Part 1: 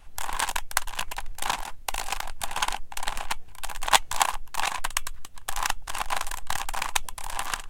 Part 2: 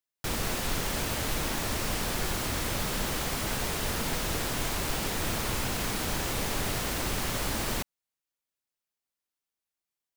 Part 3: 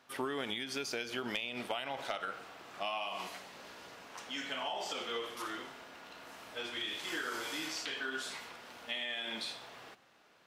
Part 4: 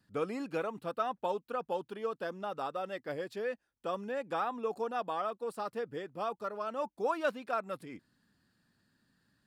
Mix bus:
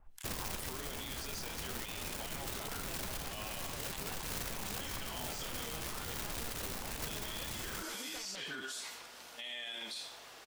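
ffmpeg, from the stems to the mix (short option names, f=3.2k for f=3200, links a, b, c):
-filter_complex "[0:a]acrossover=split=1600[a][b];[a]aeval=exprs='val(0)*(1-1/2+1/2*cos(2*PI*2.2*n/s))':c=same[c];[b]aeval=exprs='val(0)*(1-1/2-1/2*cos(2*PI*2.2*n/s))':c=same[d];[c][d]amix=inputs=2:normalize=0,volume=-10.5dB[e];[1:a]lowshelf=f=110:g=10,aeval=exprs='(mod(12.6*val(0)+1,2)-1)/12.6':c=same,volume=-8dB[f];[2:a]aeval=exprs='val(0)+0.000398*(sin(2*PI*50*n/s)+sin(2*PI*2*50*n/s)/2+sin(2*PI*3*50*n/s)/3+sin(2*PI*4*50*n/s)/4+sin(2*PI*5*50*n/s)/5)':c=same,bass=f=250:g=-6,treble=f=4k:g=11,adelay=500,volume=-3dB[g];[3:a]aeval=exprs='0.015*(abs(mod(val(0)/0.015+3,4)-2)-1)':c=same,adelay=650,volume=-3dB[h];[e][f][g][h]amix=inputs=4:normalize=0,alimiter=level_in=9dB:limit=-24dB:level=0:latency=1:release=68,volume=-9dB"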